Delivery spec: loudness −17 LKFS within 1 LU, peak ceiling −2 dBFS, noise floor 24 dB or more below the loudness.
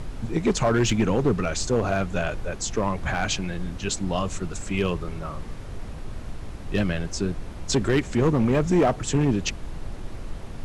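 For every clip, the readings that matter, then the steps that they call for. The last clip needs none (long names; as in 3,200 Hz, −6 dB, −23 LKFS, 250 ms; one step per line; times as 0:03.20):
share of clipped samples 1.2%; peaks flattened at −14.5 dBFS; background noise floor −37 dBFS; target noise floor −49 dBFS; integrated loudness −25.0 LKFS; sample peak −14.5 dBFS; target loudness −17.0 LKFS
→ clipped peaks rebuilt −14.5 dBFS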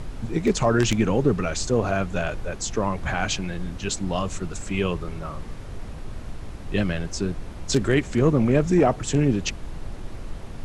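share of clipped samples 0.0%; background noise floor −37 dBFS; target noise floor −48 dBFS
→ noise reduction from a noise print 11 dB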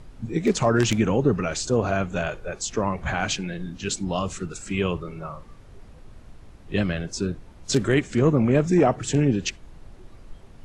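background noise floor −47 dBFS; target noise floor −48 dBFS
→ noise reduction from a noise print 6 dB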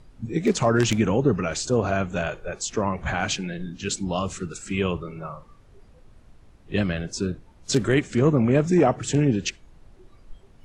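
background noise floor −53 dBFS; integrated loudness −24.0 LKFS; sample peak −6.0 dBFS; target loudness −17.0 LKFS
→ level +7 dB
brickwall limiter −2 dBFS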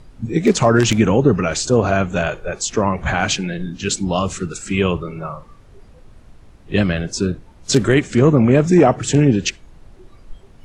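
integrated loudness −17.5 LKFS; sample peak −2.0 dBFS; background noise floor −46 dBFS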